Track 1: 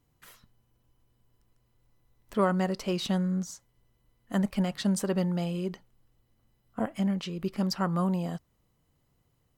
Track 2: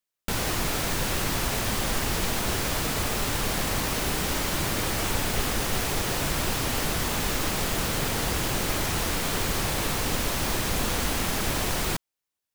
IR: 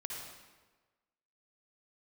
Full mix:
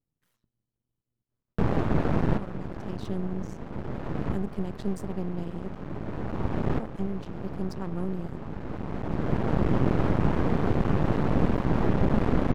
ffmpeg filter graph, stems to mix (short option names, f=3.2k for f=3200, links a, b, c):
-filter_complex "[0:a]volume=-12dB,afade=t=in:st=2.76:d=0.29:silence=0.398107,asplit=2[a][b];[1:a]lowpass=1.2k,adelay=1300,volume=1.5dB,asplit=2[c][d];[d]volume=-18.5dB[e];[b]apad=whole_len=610466[f];[c][f]sidechaincompress=threshold=-58dB:ratio=8:attack=37:release=977[g];[2:a]atrim=start_sample=2205[h];[e][h]afir=irnorm=-1:irlink=0[i];[a][g][i]amix=inputs=3:normalize=0,equalizer=f=170:t=o:w=2.5:g=12.5,aeval=exprs='max(val(0),0)':c=same"